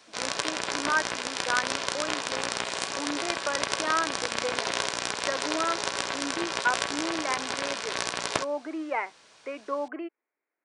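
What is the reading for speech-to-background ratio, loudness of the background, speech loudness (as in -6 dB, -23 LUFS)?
-3.0 dB, -30.0 LUFS, -33.0 LUFS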